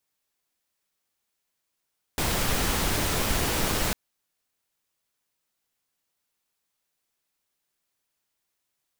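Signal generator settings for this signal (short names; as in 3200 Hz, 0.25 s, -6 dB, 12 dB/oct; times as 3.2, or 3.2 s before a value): noise pink, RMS -25.5 dBFS 1.75 s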